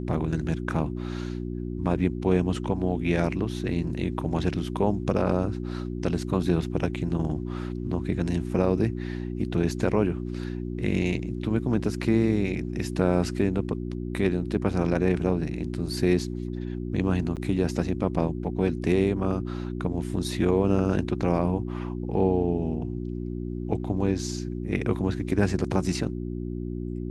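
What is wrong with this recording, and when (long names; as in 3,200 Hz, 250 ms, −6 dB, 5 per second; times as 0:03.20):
mains hum 60 Hz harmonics 6 −32 dBFS
0:17.36–0:17.37: drop-out 8 ms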